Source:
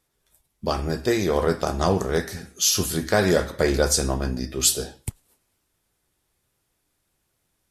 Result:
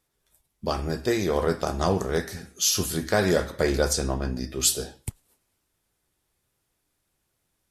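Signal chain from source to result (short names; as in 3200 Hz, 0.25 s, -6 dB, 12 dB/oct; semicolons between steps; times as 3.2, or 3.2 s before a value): 3.93–4.36 high shelf 7900 Hz -11 dB; gain -2.5 dB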